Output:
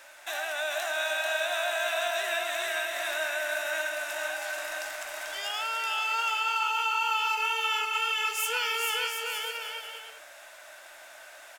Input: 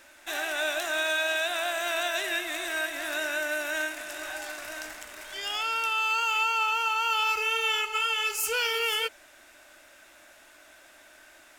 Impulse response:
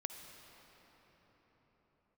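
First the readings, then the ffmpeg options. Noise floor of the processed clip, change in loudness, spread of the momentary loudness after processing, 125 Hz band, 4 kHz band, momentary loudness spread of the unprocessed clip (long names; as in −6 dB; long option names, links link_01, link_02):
−49 dBFS, −1.5 dB, 18 LU, can't be measured, −1.5 dB, 11 LU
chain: -filter_complex "[0:a]lowshelf=frequency=420:width_type=q:width=1.5:gain=-12.5,acompressor=threshold=-42dB:ratio=1.5,asplit=2[link_01][link_02];[link_02]aecho=0:1:440|726|911.9|1033|1111:0.631|0.398|0.251|0.158|0.1[link_03];[link_01][link_03]amix=inputs=2:normalize=0,volume=2.5dB"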